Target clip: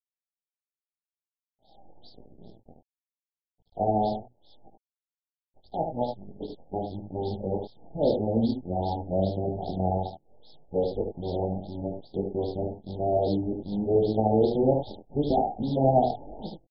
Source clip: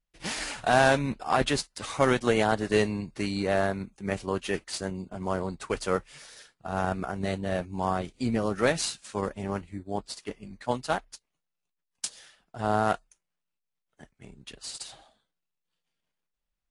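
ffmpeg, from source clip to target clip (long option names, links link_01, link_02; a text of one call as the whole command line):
ffmpeg -i in.wav -filter_complex "[0:a]areverse,bandreject=frequency=60:width_type=h:width=6,bandreject=frequency=120:width_type=h:width=6,acrossover=split=350|1300[link_01][link_02][link_03];[link_03]acompressor=threshold=-43dB:ratio=8[link_04];[link_01][link_02][link_04]amix=inputs=3:normalize=0,acrusher=bits=7:dc=4:mix=0:aa=0.000001,flanger=delay=17.5:depth=6.5:speed=0.84,aecho=1:1:74:0.531,acrusher=bits=3:mode=log:mix=0:aa=0.000001,asuperstop=centerf=1700:order=20:qfactor=0.69,afftfilt=real='re*lt(b*sr/1024,830*pow(5500/830,0.5+0.5*sin(2*PI*2.5*pts/sr)))':imag='im*lt(b*sr/1024,830*pow(5500/830,0.5+0.5*sin(2*PI*2.5*pts/sr)))':win_size=1024:overlap=0.75,volume=4dB" out.wav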